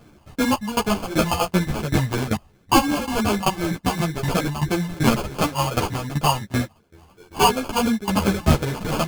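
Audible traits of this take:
phaser sweep stages 8, 2.8 Hz, lowest notch 350–1,400 Hz
aliases and images of a low sample rate 1,900 Hz, jitter 0%
tremolo saw down 2.6 Hz, depth 90%
a shimmering, thickened sound

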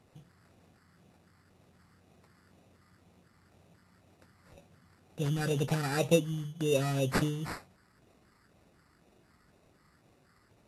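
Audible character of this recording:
phaser sweep stages 6, 2 Hz, lowest notch 560–2,000 Hz
aliases and images of a low sample rate 3,200 Hz, jitter 0%
Ogg Vorbis

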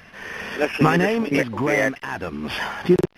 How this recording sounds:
background noise floor −49 dBFS
spectral slope −5.0 dB per octave

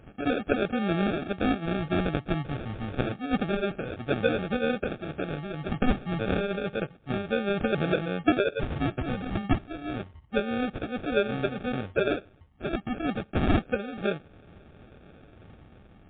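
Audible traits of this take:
phaser sweep stages 6, 0.29 Hz, lowest notch 490–1,000 Hz
aliases and images of a low sample rate 1,000 Hz, jitter 0%
MP3

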